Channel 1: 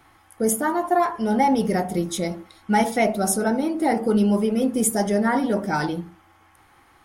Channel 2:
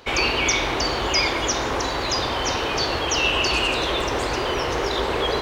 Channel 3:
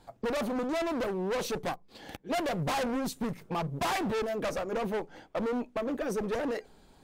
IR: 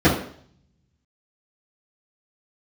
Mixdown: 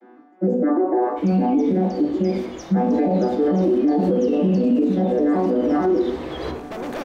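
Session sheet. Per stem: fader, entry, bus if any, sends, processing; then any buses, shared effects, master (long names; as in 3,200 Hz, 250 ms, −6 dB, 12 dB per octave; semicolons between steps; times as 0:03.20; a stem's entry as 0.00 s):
−3.5 dB, 0.00 s, send −3.5 dB, vocoder with an arpeggio as carrier minor triad, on B2, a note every 152 ms; elliptic high-pass filter 220 Hz, stop band 40 dB; high-shelf EQ 2,100 Hz −8.5 dB
−13.0 dB, 1.10 s, send −21.5 dB, no processing
−10.5 dB, 0.95 s, no send, compressor on every frequency bin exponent 0.4; soft clipping −25 dBFS, distortion −13 dB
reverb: on, RT60 0.60 s, pre-delay 3 ms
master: automatic gain control gain up to 12 dB; brickwall limiter −11.5 dBFS, peak gain reduction 10.5 dB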